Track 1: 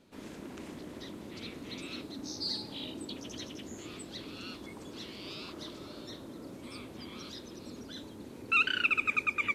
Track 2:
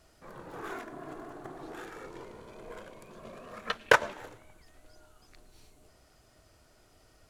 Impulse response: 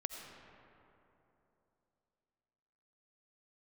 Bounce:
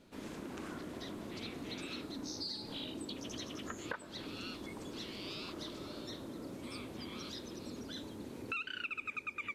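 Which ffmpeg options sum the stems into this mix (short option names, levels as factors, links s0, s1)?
-filter_complex "[0:a]volume=1.06[s0];[1:a]lowpass=f=1600:t=q:w=1.6,volume=0.237[s1];[s0][s1]amix=inputs=2:normalize=0,acompressor=threshold=0.0112:ratio=5"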